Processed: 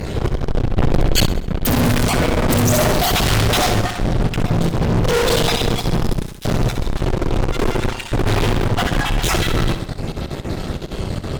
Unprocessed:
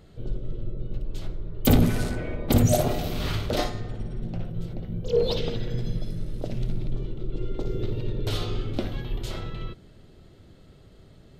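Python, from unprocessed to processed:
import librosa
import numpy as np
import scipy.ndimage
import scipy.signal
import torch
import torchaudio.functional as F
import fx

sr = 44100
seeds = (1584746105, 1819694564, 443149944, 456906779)

p1 = fx.spec_dropout(x, sr, seeds[0], share_pct=27)
p2 = fx.lowpass(p1, sr, hz=3000.0, slope=24, at=(7.72, 9.22))
p3 = fx.fuzz(p2, sr, gain_db=47.0, gate_db=-55.0)
p4 = p3 + fx.echo_feedback(p3, sr, ms=66, feedback_pct=53, wet_db=-9.5, dry=0)
p5 = fx.env_flatten(p4, sr, amount_pct=100, at=(0.76, 1.25), fade=0.02)
y = p5 * librosa.db_to_amplitude(-2.0)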